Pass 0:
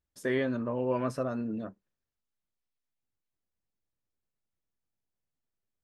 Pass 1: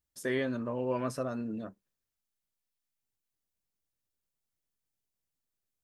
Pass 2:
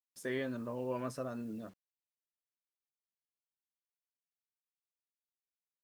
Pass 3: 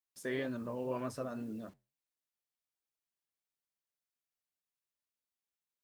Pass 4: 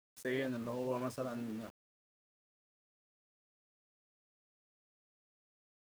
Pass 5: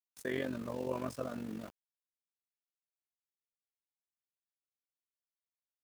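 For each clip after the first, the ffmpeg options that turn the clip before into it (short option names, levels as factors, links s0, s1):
-af "highshelf=f=4200:g=8.5,volume=0.75"
-af "acrusher=bits=9:mix=0:aa=0.000001,volume=0.531"
-af "flanger=delay=2.9:depth=9.5:regen=-78:speed=1.9:shape=sinusoidal,volume=1.68"
-af "aeval=exprs='val(0)*gte(abs(val(0)),0.00355)':c=same"
-af "tremolo=f=47:d=0.75,volume=1.5"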